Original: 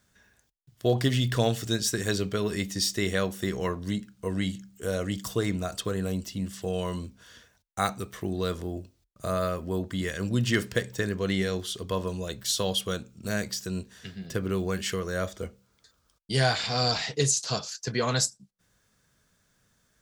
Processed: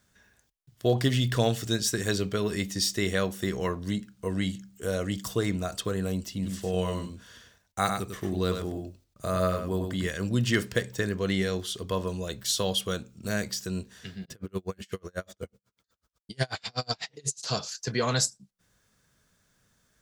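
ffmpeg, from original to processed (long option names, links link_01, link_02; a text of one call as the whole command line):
ffmpeg -i in.wav -filter_complex "[0:a]asettb=1/sr,asplit=3[link_01][link_02][link_03];[link_01]atrim=end=6.334[link_04];[link_02]atrim=start=6.33:end=10.07,asetpts=PTS-STARTPTS,afade=type=in:duration=0.004:curve=qsin,afade=type=out:start_time=3.736:duration=0.004:curve=qsin,aecho=1:1:98:0.531,atrim=end_sample=164934[link_05];[link_03]atrim=start=10.066[link_06];[link_04][link_05]acrossfade=duration=0.004:curve1=hsin:curve2=qsin[link_07];[link_07][link_06]acrossfade=duration=0.004:curve1=qsin:curve2=hsin,asplit=3[link_08][link_09][link_10];[link_08]afade=type=out:start_time=14.24:duration=0.02[link_11];[link_09]aeval=exprs='val(0)*pow(10,-39*(0.5-0.5*cos(2*PI*8.1*n/s))/20)':channel_layout=same,afade=type=in:start_time=14.24:duration=0.02,afade=type=out:start_time=17.42:duration=0.02[link_12];[link_10]afade=type=in:start_time=17.42:duration=0.02[link_13];[link_11][link_12][link_13]amix=inputs=3:normalize=0" out.wav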